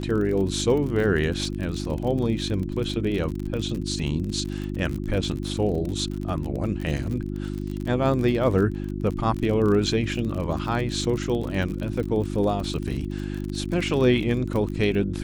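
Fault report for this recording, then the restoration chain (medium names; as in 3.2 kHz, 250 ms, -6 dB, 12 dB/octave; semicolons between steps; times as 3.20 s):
crackle 44 per s -29 dBFS
hum 50 Hz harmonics 7 -30 dBFS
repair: de-click; de-hum 50 Hz, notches 7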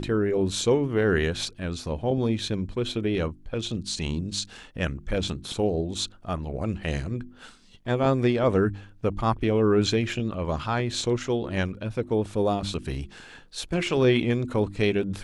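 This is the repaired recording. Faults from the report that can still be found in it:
nothing left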